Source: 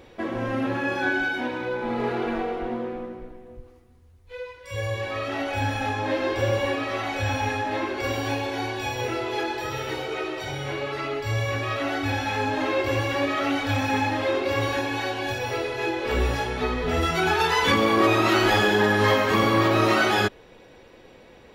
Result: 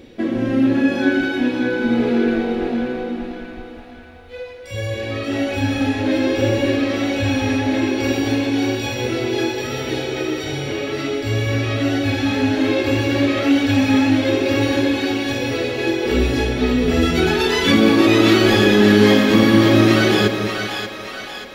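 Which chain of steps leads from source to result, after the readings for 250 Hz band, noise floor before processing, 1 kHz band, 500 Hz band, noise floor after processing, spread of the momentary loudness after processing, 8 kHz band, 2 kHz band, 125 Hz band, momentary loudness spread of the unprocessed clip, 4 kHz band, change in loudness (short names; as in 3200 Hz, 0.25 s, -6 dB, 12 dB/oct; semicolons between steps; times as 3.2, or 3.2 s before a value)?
+12.5 dB, -50 dBFS, -1.5 dB, +6.0 dB, -36 dBFS, 12 LU, +6.0 dB, +3.5 dB, +7.0 dB, 10 LU, +7.0 dB, +7.0 dB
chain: ten-band EQ 250 Hz +10 dB, 1000 Hz -9 dB, 4000 Hz +3 dB; split-band echo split 580 Hz, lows 0.197 s, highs 0.584 s, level -5.5 dB; gain +3.5 dB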